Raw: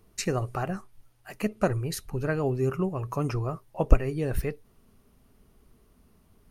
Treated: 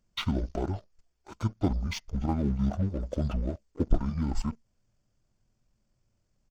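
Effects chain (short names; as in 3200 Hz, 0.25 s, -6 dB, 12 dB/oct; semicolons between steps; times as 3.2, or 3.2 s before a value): pitch shift -11.5 st; sample leveller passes 2; gain -8 dB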